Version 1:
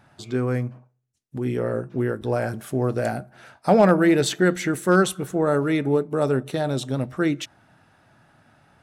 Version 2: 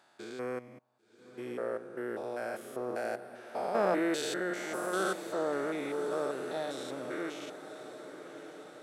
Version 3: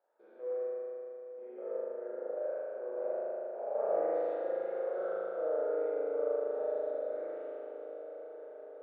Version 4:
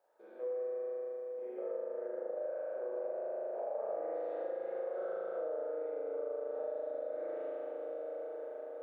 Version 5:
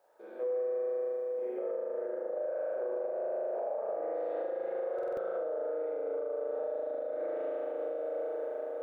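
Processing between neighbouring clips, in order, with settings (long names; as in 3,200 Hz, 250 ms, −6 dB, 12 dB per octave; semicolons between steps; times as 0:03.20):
spectrum averaged block by block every 200 ms; high-pass filter 450 Hz 12 dB per octave; feedback delay with all-pass diffusion 1,081 ms, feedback 62%, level −12 dB; level −5.5 dB
four-pole ladder band-pass 570 Hz, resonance 70%; convolution reverb RT60 3.2 s, pre-delay 38 ms, DRR −10 dB; level −5.5 dB
notch filter 1,400 Hz, Q 16; downward compressor, threshold −40 dBFS, peak gain reduction 13 dB; mains-hum notches 60/120/180/240/300/360/420 Hz; level +4.5 dB
brickwall limiter −34.5 dBFS, peak gain reduction 6.5 dB; buffer that repeats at 0:04.94, samples 2,048, times 4; level +7 dB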